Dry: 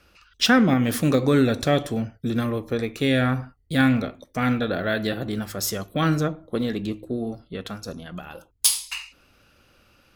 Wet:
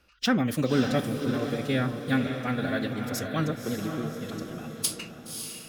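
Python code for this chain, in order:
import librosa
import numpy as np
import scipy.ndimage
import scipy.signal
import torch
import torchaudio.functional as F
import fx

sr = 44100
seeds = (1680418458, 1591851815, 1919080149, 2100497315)

y = fx.stretch_vocoder(x, sr, factor=0.56)
y = fx.echo_diffused(y, sr, ms=567, feedback_pct=48, wet_db=-5.5)
y = F.gain(torch.from_numpy(y), -5.5).numpy()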